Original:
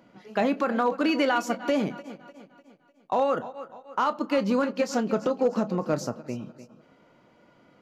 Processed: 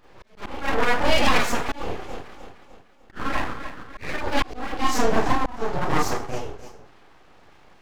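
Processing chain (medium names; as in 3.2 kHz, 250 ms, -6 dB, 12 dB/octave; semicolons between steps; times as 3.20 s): Schroeder reverb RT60 0.36 s, combs from 28 ms, DRR -7.5 dB; slow attack 400 ms; full-wave rectifier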